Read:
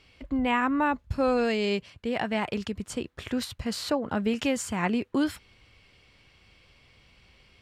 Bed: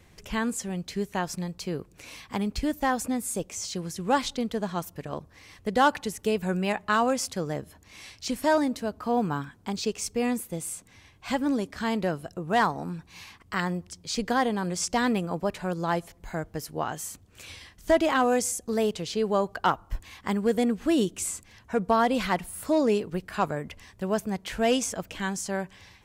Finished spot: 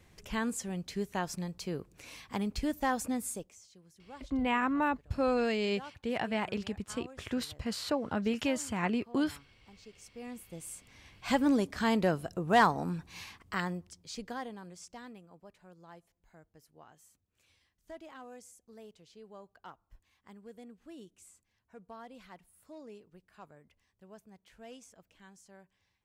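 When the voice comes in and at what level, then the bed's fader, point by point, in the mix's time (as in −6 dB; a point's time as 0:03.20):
4.00 s, −4.5 dB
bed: 0:03.28 −5 dB
0:03.67 −26 dB
0:09.81 −26 dB
0:11.17 −0.5 dB
0:13.20 −0.5 dB
0:15.25 −26 dB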